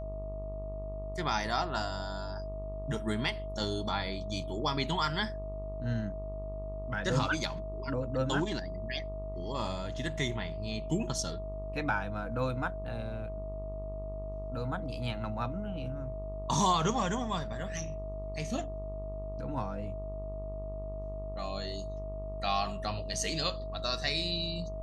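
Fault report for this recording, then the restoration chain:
buzz 50 Hz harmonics 25 -40 dBFS
tone 640 Hz -40 dBFS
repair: notch 640 Hz, Q 30; de-hum 50 Hz, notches 25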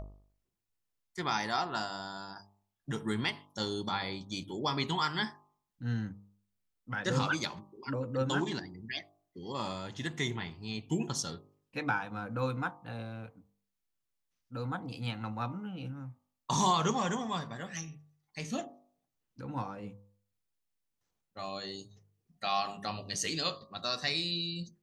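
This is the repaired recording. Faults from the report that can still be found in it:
none

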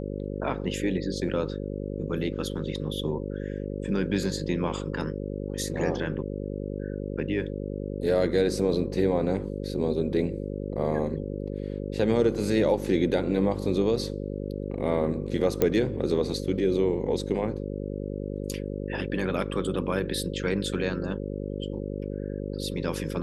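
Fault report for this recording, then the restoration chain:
buzz 50 Hz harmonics 11 -33 dBFS
15.62 pop -9 dBFS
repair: de-click; de-hum 50 Hz, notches 11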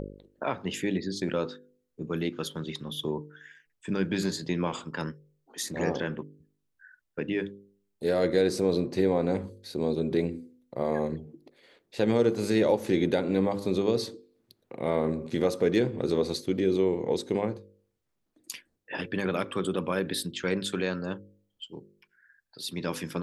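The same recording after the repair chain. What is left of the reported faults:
none

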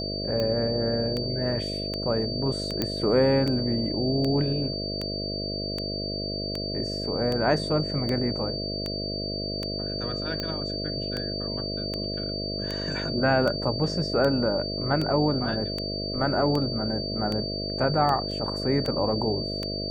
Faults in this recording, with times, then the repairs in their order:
buzz 50 Hz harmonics 13 -33 dBFS
tick 78 rpm -16 dBFS
tone 4600 Hz -32 dBFS
2.82 pop -11 dBFS
18.31 gap 3.4 ms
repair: de-click; de-hum 50 Hz, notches 13; notch 4600 Hz, Q 30; interpolate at 18.31, 3.4 ms

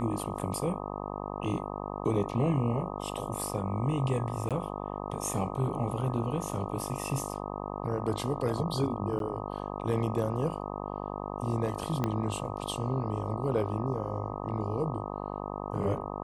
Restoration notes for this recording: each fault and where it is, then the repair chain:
buzz 50 Hz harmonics 25 -37 dBFS
4.49–4.51 gap 17 ms
9.19–9.2 gap 12 ms
12.04 pop -16 dBFS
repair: de-click; de-hum 50 Hz, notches 25; interpolate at 4.49, 17 ms; interpolate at 9.19, 12 ms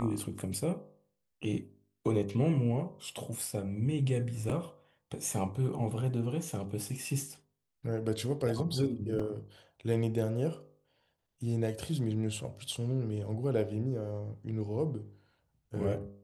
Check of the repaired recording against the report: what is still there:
12.04 pop

